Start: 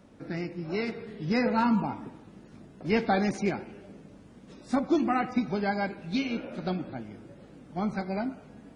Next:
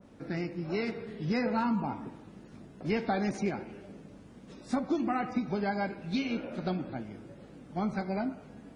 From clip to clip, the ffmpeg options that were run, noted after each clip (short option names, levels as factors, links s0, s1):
-af "bandreject=f=310.7:t=h:w=4,bandreject=f=621.4:t=h:w=4,bandreject=f=932.1:t=h:w=4,bandreject=f=1242.8:t=h:w=4,bandreject=f=1553.5:t=h:w=4,bandreject=f=1864.2:t=h:w=4,bandreject=f=2174.9:t=h:w=4,bandreject=f=2485.6:t=h:w=4,bandreject=f=2796.3:t=h:w=4,bandreject=f=3107:t=h:w=4,bandreject=f=3417.7:t=h:w=4,bandreject=f=3728.4:t=h:w=4,bandreject=f=4039.1:t=h:w=4,bandreject=f=4349.8:t=h:w=4,bandreject=f=4660.5:t=h:w=4,bandreject=f=4971.2:t=h:w=4,bandreject=f=5281.9:t=h:w=4,bandreject=f=5592.6:t=h:w=4,bandreject=f=5903.3:t=h:w=4,bandreject=f=6214:t=h:w=4,bandreject=f=6524.7:t=h:w=4,bandreject=f=6835.4:t=h:w=4,bandreject=f=7146.1:t=h:w=4,bandreject=f=7456.8:t=h:w=4,bandreject=f=7767.5:t=h:w=4,bandreject=f=8078.2:t=h:w=4,bandreject=f=8388.9:t=h:w=4,bandreject=f=8699.6:t=h:w=4,bandreject=f=9010.3:t=h:w=4,bandreject=f=9321:t=h:w=4,bandreject=f=9631.7:t=h:w=4,bandreject=f=9942.4:t=h:w=4,bandreject=f=10253.1:t=h:w=4,bandreject=f=10563.8:t=h:w=4,acompressor=threshold=0.0447:ratio=3,adynamicequalizer=threshold=0.00562:dfrequency=1700:dqfactor=0.7:tfrequency=1700:tqfactor=0.7:attack=5:release=100:ratio=0.375:range=1.5:mode=cutabove:tftype=highshelf"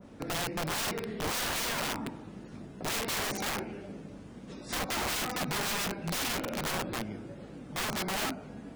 -af "aeval=exprs='(mod(39.8*val(0)+1,2)-1)/39.8':c=same,volume=1.68"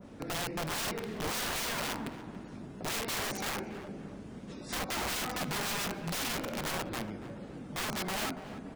-filter_complex "[0:a]asplit=2[s0][s1];[s1]alimiter=level_in=5.01:limit=0.0631:level=0:latency=1:release=435,volume=0.2,volume=0.794[s2];[s0][s2]amix=inputs=2:normalize=0,asplit=2[s3][s4];[s4]adelay=284,lowpass=f=1700:p=1,volume=0.266,asplit=2[s5][s6];[s6]adelay=284,lowpass=f=1700:p=1,volume=0.51,asplit=2[s7][s8];[s8]adelay=284,lowpass=f=1700:p=1,volume=0.51,asplit=2[s9][s10];[s10]adelay=284,lowpass=f=1700:p=1,volume=0.51,asplit=2[s11][s12];[s12]adelay=284,lowpass=f=1700:p=1,volume=0.51[s13];[s3][s5][s7][s9][s11][s13]amix=inputs=6:normalize=0,volume=0.631"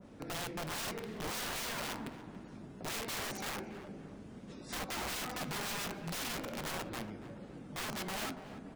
-af "flanger=delay=5.3:depth=4:regen=-85:speed=0.8:shape=triangular"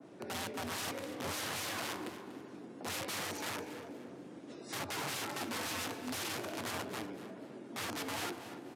-af "afreqshift=85,aecho=1:1:241|482|723:0.188|0.0584|0.0181,aresample=32000,aresample=44100"